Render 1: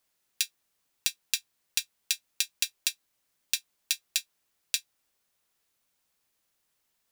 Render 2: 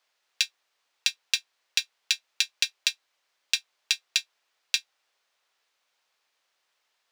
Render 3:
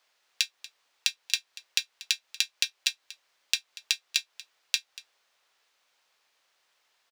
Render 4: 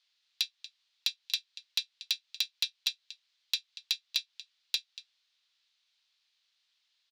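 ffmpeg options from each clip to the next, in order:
-filter_complex "[0:a]acrossover=split=450 5800:gain=0.0794 1 0.126[s0][s1][s2];[s0][s1][s2]amix=inputs=3:normalize=0,volume=2.24"
-af "acompressor=threshold=0.0398:ratio=3,aecho=1:1:237:0.119,volume=1.58"
-af "bandpass=f=3900:t=q:w=2.3:csg=0,asoftclip=type=hard:threshold=0.106,volume=1.12"

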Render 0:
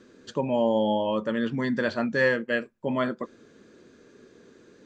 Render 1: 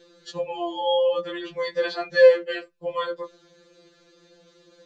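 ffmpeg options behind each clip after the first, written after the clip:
-af "equalizer=f=125:t=o:w=1:g=5,equalizer=f=250:t=o:w=1:g=-12,equalizer=f=500:t=o:w=1:g=8,equalizer=f=4000:t=o:w=1:g=10,afftfilt=real='re*2.83*eq(mod(b,8),0)':imag='im*2.83*eq(mod(b,8),0)':win_size=2048:overlap=0.75"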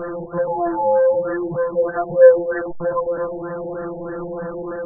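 -af "aeval=exprs='val(0)+0.5*0.0668*sgn(val(0))':c=same,afftfilt=real='re*lt(b*sr/1024,910*pow(1900/910,0.5+0.5*sin(2*PI*3.2*pts/sr)))':imag='im*lt(b*sr/1024,910*pow(1900/910,0.5+0.5*sin(2*PI*3.2*pts/sr)))':win_size=1024:overlap=0.75,volume=1.5"

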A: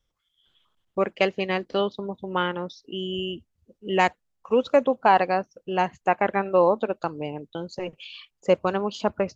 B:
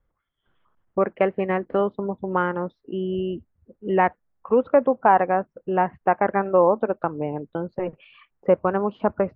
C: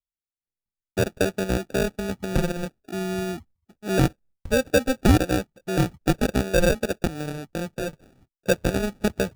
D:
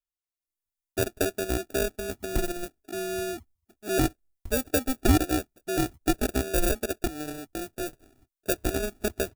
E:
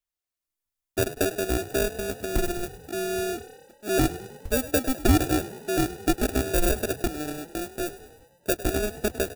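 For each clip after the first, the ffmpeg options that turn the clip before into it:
-filter_complex "[0:a]lowpass=f=1800:w=0.5412,lowpass=f=1800:w=1.3066,asplit=2[s0][s1];[s1]acompressor=threshold=0.0447:ratio=6,volume=0.841[s2];[s0][s2]amix=inputs=2:normalize=0"
-af "agate=range=0.0224:threshold=0.00501:ratio=3:detection=peak,acrusher=samples=42:mix=1:aa=0.000001,lowshelf=f=190:g=8.5,volume=0.631"
-filter_complex "[0:a]aecho=1:1:2.9:0.77,acrossover=split=6800[s0][s1];[s1]dynaudnorm=f=250:g=3:m=2.66[s2];[s0][s2]amix=inputs=2:normalize=0,volume=0.501"
-filter_complex "[0:a]asplit=2[s0][s1];[s1]volume=16.8,asoftclip=hard,volume=0.0596,volume=0.398[s2];[s0][s2]amix=inputs=2:normalize=0,asplit=7[s3][s4][s5][s6][s7][s8][s9];[s4]adelay=102,afreqshift=34,volume=0.168[s10];[s5]adelay=204,afreqshift=68,volume=0.0989[s11];[s6]adelay=306,afreqshift=102,volume=0.0582[s12];[s7]adelay=408,afreqshift=136,volume=0.0347[s13];[s8]adelay=510,afreqshift=170,volume=0.0204[s14];[s9]adelay=612,afreqshift=204,volume=0.012[s15];[s3][s10][s11][s12][s13][s14][s15]amix=inputs=7:normalize=0"

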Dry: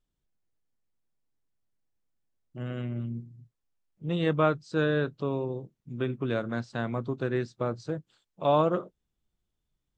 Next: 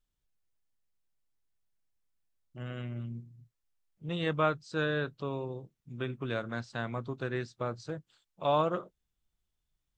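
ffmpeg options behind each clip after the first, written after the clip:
-af "equalizer=f=270:t=o:w=2.9:g=-7"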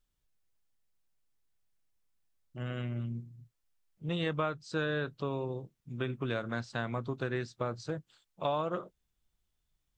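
-af "acompressor=threshold=0.0282:ratio=5,volume=1.33"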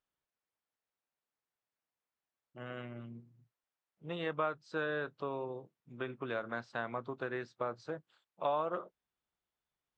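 -af "bandpass=f=930:t=q:w=0.59:csg=0"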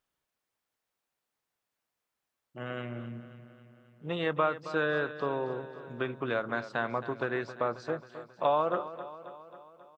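-af "aecho=1:1:269|538|807|1076|1345|1614:0.211|0.127|0.0761|0.0457|0.0274|0.0164,volume=2.11"

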